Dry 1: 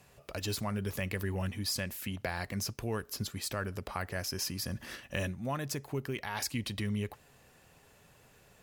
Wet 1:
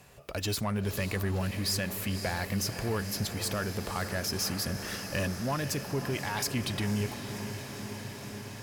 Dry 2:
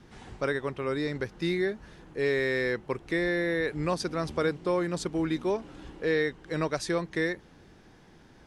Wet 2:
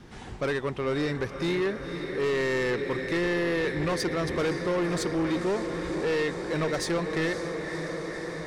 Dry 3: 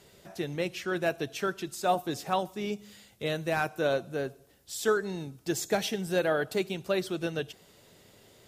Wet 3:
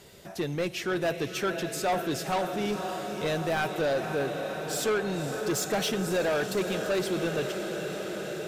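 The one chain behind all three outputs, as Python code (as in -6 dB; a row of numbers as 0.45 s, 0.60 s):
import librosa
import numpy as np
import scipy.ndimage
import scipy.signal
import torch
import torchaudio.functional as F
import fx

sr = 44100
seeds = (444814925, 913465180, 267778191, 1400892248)

y = fx.echo_diffused(x, sr, ms=531, feedback_pct=79, wet_db=-11.0)
y = 10.0 ** (-27.5 / 20.0) * np.tanh(y / 10.0 ** (-27.5 / 20.0))
y = y * 10.0 ** (5.0 / 20.0)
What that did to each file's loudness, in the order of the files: +3.5 LU, +1.5 LU, +1.5 LU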